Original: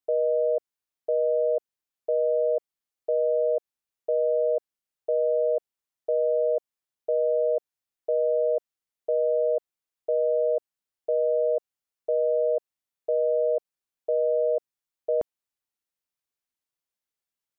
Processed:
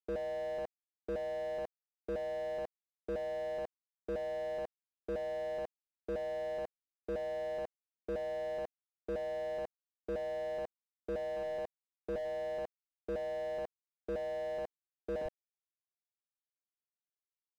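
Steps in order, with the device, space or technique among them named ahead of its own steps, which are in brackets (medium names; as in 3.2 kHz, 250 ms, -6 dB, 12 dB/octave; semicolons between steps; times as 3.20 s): 11.36–12.18 s: peaking EQ 190 Hz -6 dB 0.84 oct; three bands offset in time mids, lows, highs 40/70 ms, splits 150/470 Hz; early transistor amplifier (crossover distortion -55.5 dBFS; slew-rate limiter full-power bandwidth 4.4 Hz); trim +6 dB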